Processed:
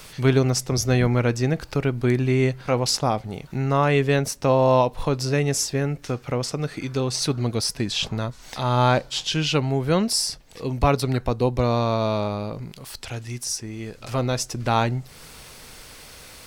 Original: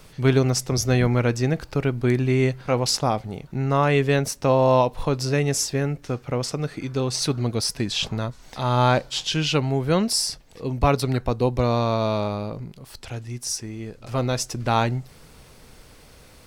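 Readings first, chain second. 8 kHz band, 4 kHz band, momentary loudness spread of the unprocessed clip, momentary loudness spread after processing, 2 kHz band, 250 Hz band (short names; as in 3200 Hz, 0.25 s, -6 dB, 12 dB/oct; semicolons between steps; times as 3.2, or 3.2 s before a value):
0.0 dB, 0.0 dB, 11 LU, 14 LU, 0.0 dB, 0.0 dB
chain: mismatched tape noise reduction encoder only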